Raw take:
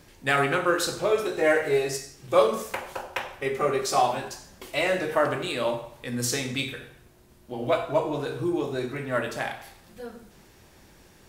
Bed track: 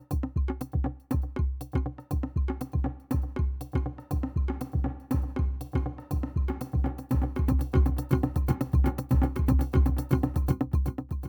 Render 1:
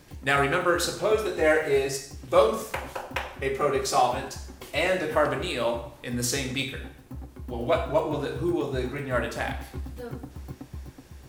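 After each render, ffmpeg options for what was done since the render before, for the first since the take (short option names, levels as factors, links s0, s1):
-filter_complex "[1:a]volume=0.211[s0];[0:a][s0]amix=inputs=2:normalize=0"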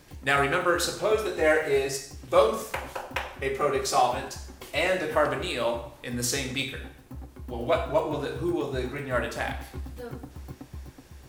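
-af "equalizer=f=160:w=0.5:g=-2.5"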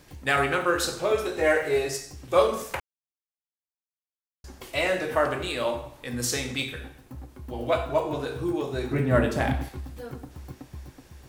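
-filter_complex "[0:a]asettb=1/sr,asplit=3[s0][s1][s2];[s0]atrim=end=8.914[s3];[s1]atrim=start=8.91:end=9.69,asetpts=PTS-STARTPTS,afade=t=in:d=0.004:c=qsin,afade=t=out:st=0.776:d=0.004:c=qsin,equalizer=f=170:w=0.37:g=13[s4];[s2]atrim=start=9.686[s5];[s3][s4]acrossfade=d=0.004:c1=hsin:c2=qsin[s6];[s6][s5]acrossfade=d=0.004:c1=qsin:c2=hsin,asplit=3[s7][s8][s9];[s7]atrim=end=2.8,asetpts=PTS-STARTPTS,afade=t=out:st=2.796:d=0.004:c=hsin[s10];[s8]atrim=start=2.8:end=4.44,asetpts=PTS-STARTPTS,volume=0[s11];[s9]atrim=start=4.44,asetpts=PTS-STARTPTS,afade=t=in:d=0.004:c=hsin[s12];[s10][s11][s12]concat=n=3:v=0:a=1"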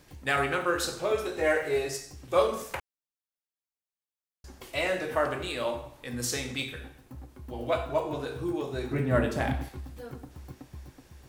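-af "volume=0.668"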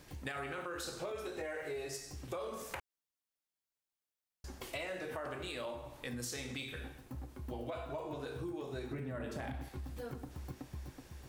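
-af "alimiter=limit=0.0841:level=0:latency=1:release=28,acompressor=threshold=0.0112:ratio=6"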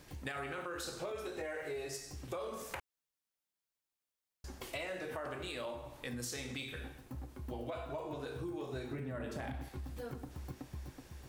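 -filter_complex "[0:a]asettb=1/sr,asplit=3[s0][s1][s2];[s0]atrim=end=8.484[s3];[s1]atrim=start=8.48:end=8.96,asetpts=PTS-STARTPTS,afade=t=in:d=0.004:c=qsin,afade=t=out:st=0.476:d=0.004:c=qsin,asplit=2[s4][s5];[s5]adelay=38,volume=0.398[s6];[s4][s6]amix=inputs=2:normalize=0,atrim=end_sample=21168[s7];[s2]atrim=start=8.956[s8];[s3][s7]acrossfade=d=0.004:c1=hsin:c2=qsin[s9];[s9][s8]acrossfade=d=0.004:c1=qsin:c2=hsin"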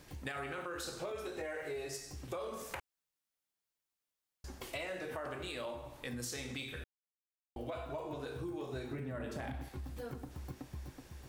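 -filter_complex "[0:a]asplit=3[s0][s1][s2];[s0]atrim=end=6.84,asetpts=PTS-STARTPTS,afade=t=out:st=6.836:d=0.004:c=hsin[s3];[s1]atrim=start=6.84:end=7.56,asetpts=PTS-STARTPTS,volume=0[s4];[s2]atrim=start=7.56,asetpts=PTS-STARTPTS,afade=t=in:d=0.004:c=hsin[s5];[s3][s4][s5]concat=n=3:v=0:a=1"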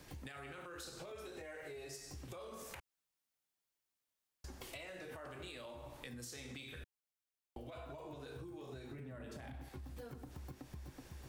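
-filter_complex "[0:a]acrossover=split=200|2300[s0][s1][s2];[s1]alimiter=level_in=5.01:limit=0.0631:level=0:latency=1:release=151,volume=0.2[s3];[s0][s3][s2]amix=inputs=3:normalize=0,acompressor=threshold=0.00501:ratio=6"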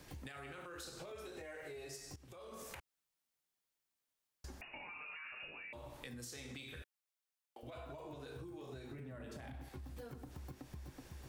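-filter_complex "[0:a]asettb=1/sr,asplit=3[s0][s1][s2];[s0]atrim=end=4.614[s3];[s1]atrim=start=4.61:end=5.73,asetpts=PTS-STARTPTS,afade=t=in:d=0.004:c=qsin,afade=t=out:st=1.116:d=0.004:c=qsin,lowpass=f=2500:t=q:w=0.5098,lowpass=f=2500:t=q:w=0.6013,lowpass=f=2500:t=q:w=0.9,lowpass=f=2500:t=q:w=2.563,afreqshift=-2900[s4];[s2]atrim=start=5.726[s5];[s3][s4]acrossfade=d=0.004:c1=hsin:c2=qsin[s6];[s6][s5]acrossfade=d=0.004:c1=qsin:c2=hsin,asettb=1/sr,asplit=3[s7][s8][s9];[s7]atrim=end=6.824[s10];[s8]atrim=start=6.82:end=7.63,asetpts=PTS-STARTPTS,afade=t=in:d=0.004:c=qsin,afade=t=out:st=0.806:d=0.004:c=qsin,highpass=550[s11];[s9]atrim=start=7.626[s12];[s10][s11]acrossfade=d=0.004:c1=hsin:c2=qsin[s13];[s13][s12]acrossfade=d=0.004:c1=qsin:c2=hsin,asplit=2[s14][s15];[s14]atrim=end=2.16,asetpts=PTS-STARTPTS,afade=t=out:st=2.156:d=0.004:c=hsin:silence=0.177828[s16];[s15]atrim=start=2.16,asetpts=PTS-STARTPTS,afade=t=in:d=0.44:silence=0.177828[s17];[s16][s17]concat=n=2:v=0:a=1"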